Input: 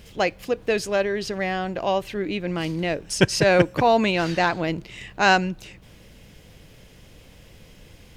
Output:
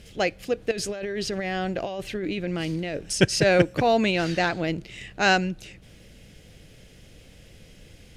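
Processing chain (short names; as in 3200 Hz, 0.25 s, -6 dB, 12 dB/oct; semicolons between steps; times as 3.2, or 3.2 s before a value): Chebyshev low-pass 11000 Hz, order 2; bell 1000 Hz -9 dB 0.51 oct; 0.71–3.14 negative-ratio compressor -29 dBFS, ratio -1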